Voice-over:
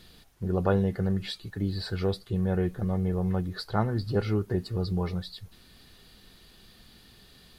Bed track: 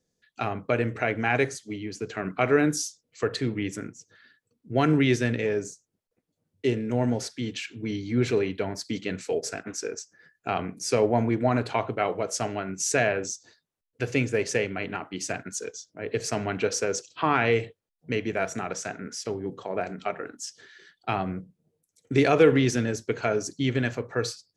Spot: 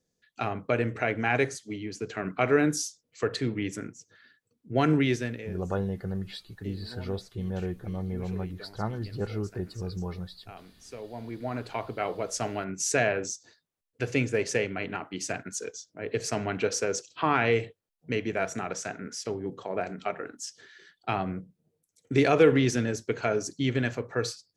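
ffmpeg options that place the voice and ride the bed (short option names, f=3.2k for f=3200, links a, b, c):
-filter_complex "[0:a]adelay=5050,volume=-5.5dB[a];[1:a]volume=16dB,afade=t=out:st=4.93:d=0.62:silence=0.133352,afade=t=in:st=11.1:d=1.44:silence=0.133352[b];[a][b]amix=inputs=2:normalize=0"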